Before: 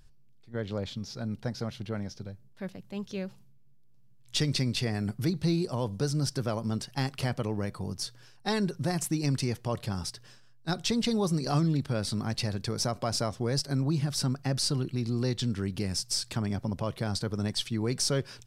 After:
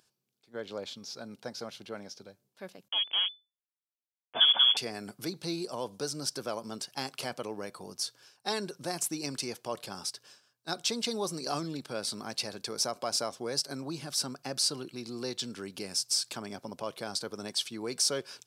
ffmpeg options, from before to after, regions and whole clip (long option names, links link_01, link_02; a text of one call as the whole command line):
ffmpeg -i in.wav -filter_complex "[0:a]asettb=1/sr,asplit=3[link_01][link_02][link_03];[link_01]atrim=end=2.884[link_04];[link_02]atrim=start=2.88:end=4.77,asetpts=PTS-STARTPTS,afade=type=in:duration=0.004:curve=qsin,afade=type=out:start_time=1.886:duration=0.004:curve=qsin,acrusher=bits=5:mix=0:aa=0.5,acontrast=52,lowpass=frequency=3000:width_type=q:width=0.5098,lowpass=frequency=3000:width_type=q:width=0.6013,lowpass=frequency=3000:width_type=q:width=0.9,lowpass=frequency=3000:width_type=q:width=2.563,afreqshift=-3500[link_05];[link_03]atrim=start=4.766[link_06];[link_04][link_05]acrossfade=duration=0.004:curve1=hsin:curve2=qsin[link_07];[link_07][link_06]acrossfade=duration=0.004:curve1=qsin:curve2=hsin,highpass=160,bass=frequency=250:gain=-13,treble=frequency=4000:gain=4,bandreject=frequency=1900:width=9.7,volume=-1.5dB" out.wav